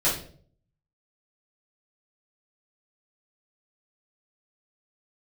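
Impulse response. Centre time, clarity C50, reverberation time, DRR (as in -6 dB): 33 ms, 5.5 dB, 0.50 s, -9.5 dB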